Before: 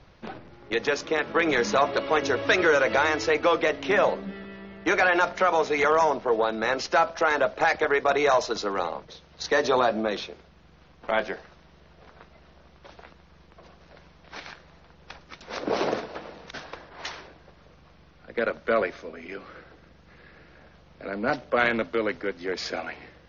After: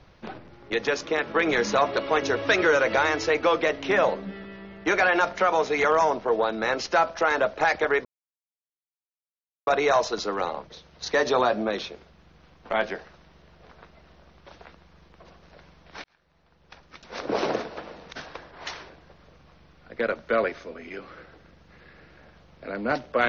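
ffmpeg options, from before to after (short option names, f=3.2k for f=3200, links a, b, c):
-filter_complex "[0:a]asplit=3[a][b][c];[a]atrim=end=8.05,asetpts=PTS-STARTPTS,afade=t=out:st=8.046:d=0.004:c=hsin,apad=pad_dur=1.62[d];[b]atrim=start=8.05:end=14.42,asetpts=PTS-STARTPTS,afade=t=in:d=0.004:c=hsin,afade=t=out:st=6.366:d=0.004:c=hsin[e];[c]atrim=start=14.42,asetpts=PTS-STARTPTS,afade=t=in:d=1.29[f];[d][e][f]concat=n=3:v=0:a=1"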